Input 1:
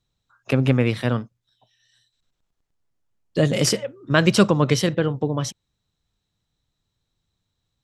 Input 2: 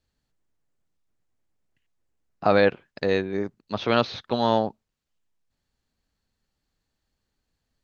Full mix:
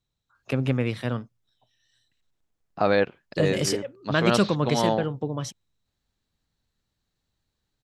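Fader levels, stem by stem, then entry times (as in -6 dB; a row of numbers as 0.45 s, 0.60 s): -6.0 dB, -2.5 dB; 0.00 s, 0.35 s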